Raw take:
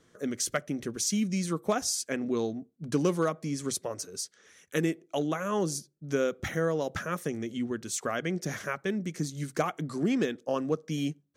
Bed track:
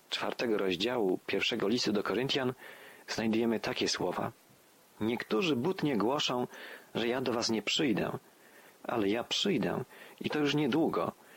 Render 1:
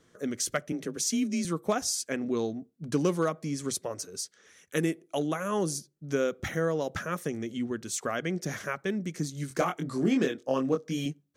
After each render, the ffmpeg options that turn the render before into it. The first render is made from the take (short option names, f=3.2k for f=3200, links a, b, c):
-filter_complex "[0:a]asettb=1/sr,asplit=3[a][b][c];[a]atrim=end=0.724[d];[b]atrim=start=0.72:end=1.45,asetpts=PTS-STARTPTS,afade=t=in:d=0.004:c=qsin,afade=t=out:st=0.726:d=0.004:c=qsin,afreqshift=33[e];[c]atrim=start=1.446[f];[d][e]acrossfade=d=0.004:c1=hsin:c2=qsin[g];[g][f]acrossfade=d=0.004:c1=qsin:c2=hsin,asettb=1/sr,asplit=3[h][i][j];[h]atrim=end=4.774[k];[i]atrim=start=4.77:end=5.72,asetpts=PTS-STARTPTS,afade=t=in:d=0.004:c=qsin,afade=t=out:st=0.946:d=0.004:c=qsin,equalizer=f=10k:t=o:w=0.29:g=10.5[l];[j]atrim=start=5.716[m];[k][l]acrossfade=d=0.004:c1=hsin:c2=qsin[n];[n][m]acrossfade=d=0.004:c1=qsin:c2=hsin,asettb=1/sr,asplit=3[o][p][q];[o]atrim=end=9.484[r];[p]atrim=start=9.48:end=11.06,asetpts=PTS-STARTPTS,afade=t=in:d=0.004:c=qsin,afade=t=out:st=1.576:d=0.004:c=qsin,asplit=2[s][t];[t]adelay=23,volume=-4dB[u];[s][u]amix=inputs=2:normalize=0,atrim=end_sample=69678[v];[q]atrim=start=11.056[w];[r][v]acrossfade=d=0.004:c1=hsin:c2=qsin[x];[x][w]acrossfade=d=0.004:c1=qsin:c2=hsin"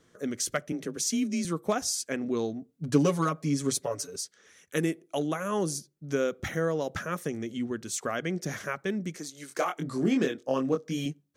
-filter_complex "[0:a]asettb=1/sr,asplit=3[a][b][c];[a]atrim=end=2.684[d];[b]atrim=start=2.68:end=4.16,asetpts=PTS-STARTPTS,afade=t=in:d=0.004:c=qsin,afade=t=out:st=1.476:d=0.004:c=qsin,aecho=1:1:7.1:0.91,atrim=end_sample=65268[e];[c]atrim=start=4.156[f];[d][e]acrossfade=d=0.004:c1=hsin:c2=qsin[g];[g][f]acrossfade=d=0.004:c1=qsin:c2=hsin,asettb=1/sr,asplit=3[h][i][j];[h]atrim=end=9.174[k];[i]atrim=start=9.17:end=9.77,asetpts=PTS-STARTPTS,afade=t=in:d=0.004:c=qsin,afade=t=out:st=0.596:d=0.004:c=qsin,highpass=420[l];[j]atrim=start=9.766[m];[k][l]acrossfade=d=0.004:c1=hsin:c2=qsin[n];[n][m]acrossfade=d=0.004:c1=qsin:c2=hsin"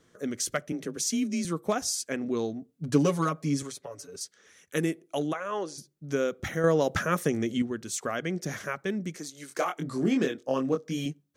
-filter_complex "[0:a]asettb=1/sr,asplit=3[a][b][c];[a]atrim=end=3.624[d];[b]atrim=start=3.62:end=4.21,asetpts=PTS-STARTPTS,afade=t=in:d=0.004:c=qsin,afade=t=out:st=0.586:d=0.004:c=qsin,acrossover=split=580|3300[e][f][g];[e]acompressor=threshold=-43dB:ratio=4[h];[f]acompressor=threshold=-45dB:ratio=4[i];[g]acompressor=threshold=-45dB:ratio=4[j];[h][i][j]amix=inputs=3:normalize=0[k];[c]atrim=start=4.206[l];[d][k]acrossfade=d=0.004:c1=hsin:c2=qsin[m];[m][l]acrossfade=d=0.004:c1=qsin:c2=hsin,asplit=3[n][o][p];[n]afade=t=out:st=5.32:d=0.02[q];[o]highpass=430,lowpass=4.1k,afade=t=in:st=5.32:d=0.02,afade=t=out:st=5.77:d=0.02[r];[p]afade=t=in:st=5.77:d=0.02[s];[q][r][s]amix=inputs=3:normalize=0,asplit=3[t][u][v];[t]atrim=end=6.642[w];[u]atrim=start=6.638:end=7.622,asetpts=PTS-STARTPTS,volume=6dB[x];[v]atrim=start=7.618[y];[w][x]acrossfade=d=0.004:c1=hsin:c2=hsin[z];[z][y]acrossfade=d=0.004:c1=hsin:c2=hsin"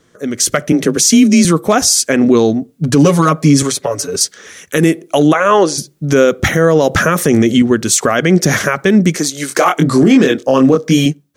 -af "dynaudnorm=f=130:g=7:m=15dB,alimiter=level_in=10dB:limit=-1dB:release=50:level=0:latency=1"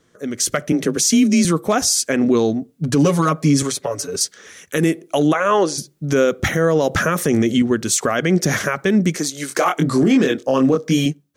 -af "volume=-6dB"